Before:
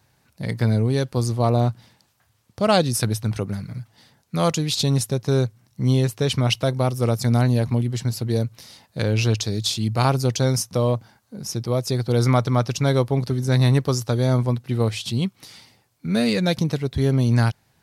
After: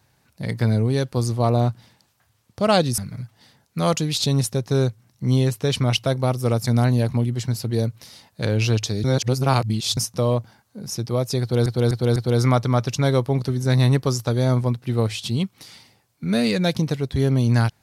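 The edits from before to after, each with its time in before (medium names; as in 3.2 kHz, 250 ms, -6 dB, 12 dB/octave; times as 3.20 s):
2.98–3.55 s: delete
9.61–10.54 s: reverse
11.98–12.23 s: loop, 4 plays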